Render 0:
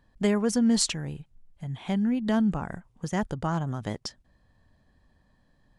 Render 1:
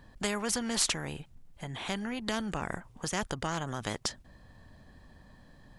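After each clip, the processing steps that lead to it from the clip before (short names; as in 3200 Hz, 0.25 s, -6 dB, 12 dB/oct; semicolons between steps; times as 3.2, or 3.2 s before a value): spectral compressor 2:1; gain -2.5 dB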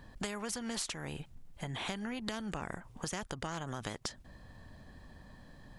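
compressor 12:1, threshold -36 dBFS, peak gain reduction 13.5 dB; gain +1.5 dB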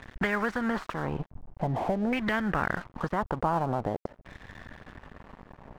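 sample leveller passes 3; LFO low-pass saw down 0.47 Hz 580–2200 Hz; crossover distortion -46 dBFS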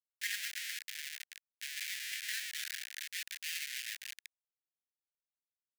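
regenerating reverse delay 0.158 s, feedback 70%, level -10 dB; Schmitt trigger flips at -29.5 dBFS; steep high-pass 1700 Hz 72 dB/oct; gain +1.5 dB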